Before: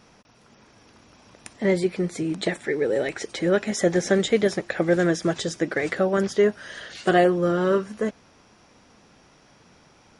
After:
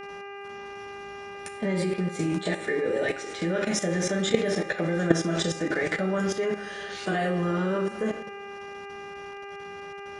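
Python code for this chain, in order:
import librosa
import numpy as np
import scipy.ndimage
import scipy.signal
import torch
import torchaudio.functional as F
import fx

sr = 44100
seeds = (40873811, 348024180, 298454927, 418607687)

y = fx.rev_double_slope(x, sr, seeds[0], early_s=0.39, late_s=1.6, knee_db=-18, drr_db=-1.5)
y = fx.level_steps(y, sr, step_db=13)
y = fx.dmg_buzz(y, sr, base_hz=400.0, harmonics=7, level_db=-40.0, tilt_db=-4, odd_only=False)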